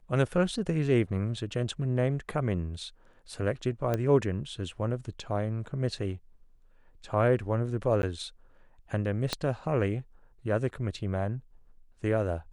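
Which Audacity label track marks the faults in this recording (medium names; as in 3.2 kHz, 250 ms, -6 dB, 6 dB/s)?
3.940000	3.940000	pop -16 dBFS
8.020000	8.030000	dropout
9.330000	9.330000	pop -13 dBFS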